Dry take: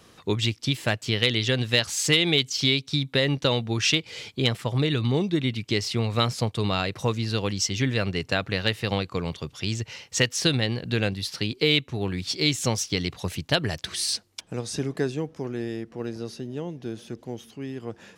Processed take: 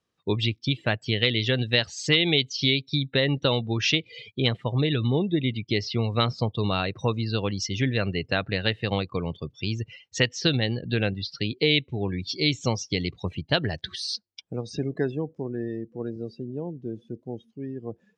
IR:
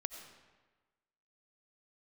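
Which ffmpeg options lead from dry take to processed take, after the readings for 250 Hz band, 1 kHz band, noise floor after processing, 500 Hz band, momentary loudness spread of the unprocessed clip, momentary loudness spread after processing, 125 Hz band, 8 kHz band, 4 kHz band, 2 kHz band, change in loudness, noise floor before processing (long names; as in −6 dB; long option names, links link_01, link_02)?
0.0 dB, −0.5 dB, −68 dBFS, 0.0 dB, 12 LU, 12 LU, 0.0 dB, −9.0 dB, −1.0 dB, −0.5 dB, −0.5 dB, −56 dBFS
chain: -filter_complex "[0:a]acrossover=split=5800[link_01][link_02];[link_02]acompressor=threshold=-43dB:ratio=4:attack=1:release=60[link_03];[link_01][link_03]amix=inputs=2:normalize=0,afftdn=noise_reduction=27:noise_floor=-36,lowpass=8500"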